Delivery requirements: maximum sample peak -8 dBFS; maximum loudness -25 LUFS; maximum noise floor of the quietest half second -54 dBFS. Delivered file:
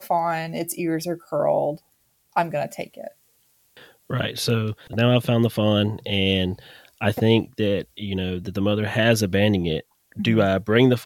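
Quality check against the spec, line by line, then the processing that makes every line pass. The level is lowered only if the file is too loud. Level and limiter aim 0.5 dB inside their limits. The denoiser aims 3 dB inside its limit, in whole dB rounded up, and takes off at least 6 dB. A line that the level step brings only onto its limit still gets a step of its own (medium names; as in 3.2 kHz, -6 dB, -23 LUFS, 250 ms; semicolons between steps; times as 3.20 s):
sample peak -5.0 dBFS: fail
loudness -22.5 LUFS: fail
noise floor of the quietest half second -65 dBFS: pass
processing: trim -3 dB; peak limiter -8.5 dBFS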